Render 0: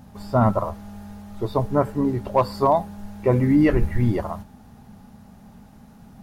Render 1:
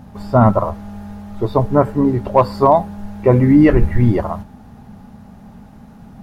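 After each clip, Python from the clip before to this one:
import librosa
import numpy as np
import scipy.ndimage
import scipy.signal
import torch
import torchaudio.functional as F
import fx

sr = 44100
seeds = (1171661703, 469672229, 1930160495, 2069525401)

y = fx.high_shelf(x, sr, hz=3700.0, db=-8.5)
y = y * 10.0 ** (7.0 / 20.0)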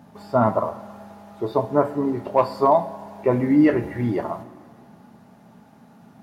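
y = scipy.signal.sosfilt(scipy.signal.butter(2, 200.0, 'highpass', fs=sr, output='sos'), x)
y = fx.rev_double_slope(y, sr, seeds[0], early_s=0.3, late_s=2.3, knee_db=-18, drr_db=6.0)
y = y * 10.0 ** (-6.0 / 20.0)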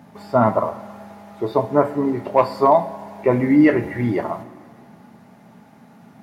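y = scipy.signal.sosfilt(scipy.signal.butter(2, 77.0, 'highpass', fs=sr, output='sos'), x)
y = fx.peak_eq(y, sr, hz=2100.0, db=5.5, octaves=0.41)
y = y * 10.0 ** (2.5 / 20.0)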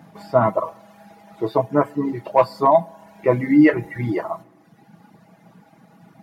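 y = fx.dereverb_blind(x, sr, rt60_s=1.1)
y = y + 0.52 * np.pad(y, (int(6.2 * sr / 1000.0), 0))[:len(y)]
y = y * 10.0 ** (-1.0 / 20.0)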